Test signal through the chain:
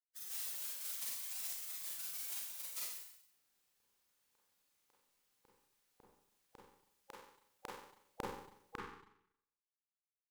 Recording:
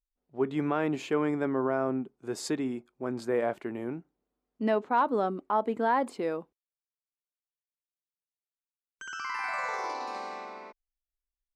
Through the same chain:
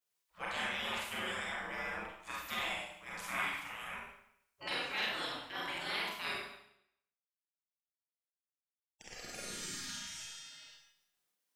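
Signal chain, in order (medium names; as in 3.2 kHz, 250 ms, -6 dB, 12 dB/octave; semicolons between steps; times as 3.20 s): spectral gate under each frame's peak -30 dB weak; Schroeder reverb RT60 0.74 s, combs from 31 ms, DRR -4.5 dB; trim +9.5 dB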